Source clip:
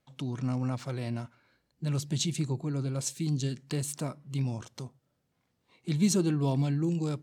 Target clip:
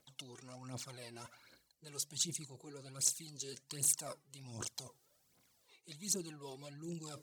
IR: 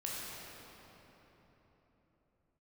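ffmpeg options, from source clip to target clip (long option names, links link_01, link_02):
-af "lowshelf=frequency=190:gain=6,areverse,acompressor=threshold=-40dB:ratio=8,areverse,bass=frequency=250:gain=-15,treble=frequency=4000:gain=13,aphaser=in_gain=1:out_gain=1:delay=2.7:decay=0.65:speed=1.3:type=triangular"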